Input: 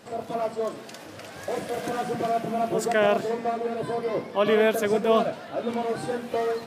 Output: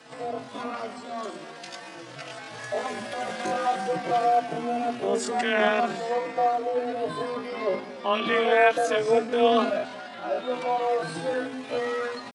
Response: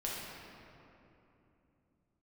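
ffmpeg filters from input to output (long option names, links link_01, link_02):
-filter_complex "[0:a]aresample=22050,aresample=44100,afreqshift=25,atempo=0.54,acrossover=split=780|5700[link_01][link_02][link_03];[link_02]acontrast=39[link_04];[link_01][link_04][link_03]amix=inputs=3:normalize=0,asplit=2[link_05][link_06];[link_06]adelay=4.1,afreqshift=-0.44[link_07];[link_05][link_07]amix=inputs=2:normalize=1,volume=1.5dB"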